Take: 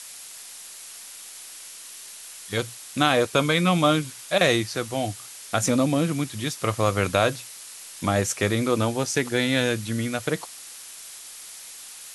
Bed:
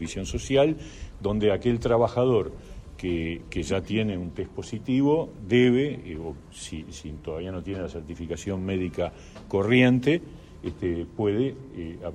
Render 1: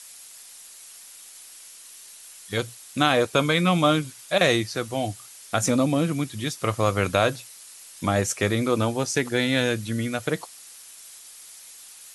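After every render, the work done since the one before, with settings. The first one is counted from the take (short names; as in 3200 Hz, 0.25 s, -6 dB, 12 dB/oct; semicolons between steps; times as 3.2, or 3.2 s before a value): denoiser 6 dB, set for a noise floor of -42 dBFS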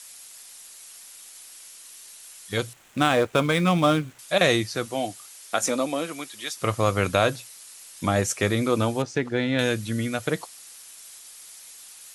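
2.73–4.19 median filter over 9 samples; 4.85–6.55 HPF 180 Hz -> 660 Hz; 9.02–9.59 tape spacing loss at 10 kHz 20 dB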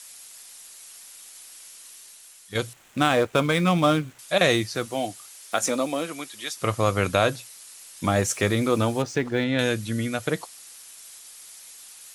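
1.87–2.55 fade out, to -7 dB; 4.5–6.06 block floating point 7-bit; 8.04–9.44 G.711 law mismatch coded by mu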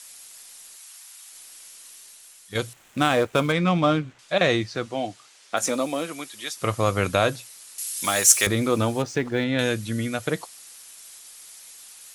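0.76–1.32 HPF 720 Hz 24 dB/oct; 3.52–5.57 air absorption 94 m; 7.78–8.47 tilt +4.5 dB/oct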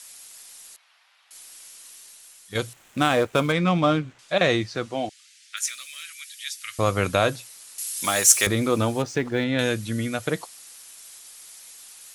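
0.76–1.31 air absorption 350 m; 5.09–6.79 inverse Chebyshev high-pass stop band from 890 Hz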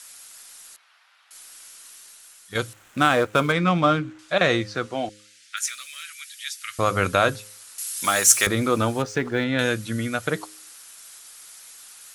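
bell 1400 Hz +6 dB 0.61 oct; de-hum 104.2 Hz, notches 5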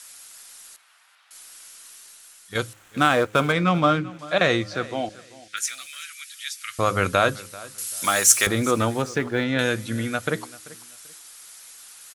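feedback echo 0.388 s, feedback 25%, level -20 dB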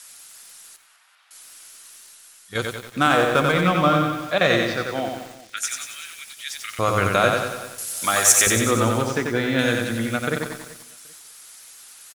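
echo 0.198 s -15 dB; lo-fi delay 91 ms, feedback 55%, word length 7-bit, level -3.5 dB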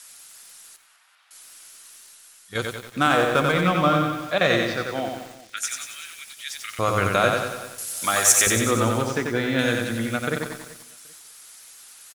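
gain -1.5 dB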